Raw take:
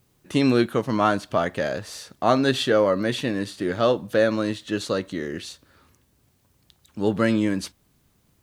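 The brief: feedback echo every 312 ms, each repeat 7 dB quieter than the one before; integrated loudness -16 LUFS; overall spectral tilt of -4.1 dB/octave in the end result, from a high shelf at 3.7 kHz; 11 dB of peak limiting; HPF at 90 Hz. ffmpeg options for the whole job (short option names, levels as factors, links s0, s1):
-af "highpass=90,highshelf=f=3700:g=8,alimiter=limit=0.168:level=0:latency=1,aecho=1:1:312|624|936|1248|1560:0.447|0.201|0.0905|0.0407|0.0183,volume=3.35"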